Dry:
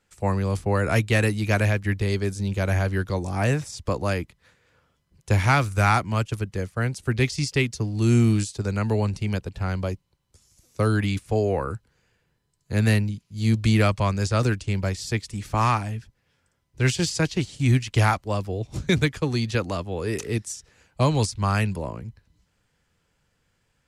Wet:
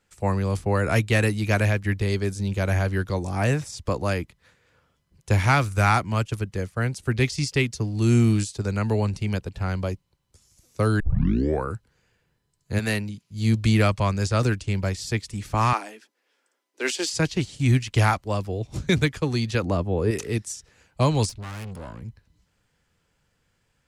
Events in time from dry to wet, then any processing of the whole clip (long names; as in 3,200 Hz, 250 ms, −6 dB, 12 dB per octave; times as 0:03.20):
0:11.00: tape start 0.64 s
0:12.78–0:13.30: high-pass filter 460 Hz → 120 Hz 6 dB per octave
0:15.73–0:17.13: Butterworth high-pass 280 Hz
0:19.63–0:20.11: tilt shelving filter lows +6.5 dB, about 1,200 Hz
0:21.29–0:22.02: tube saturation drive 33 dB, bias 0.5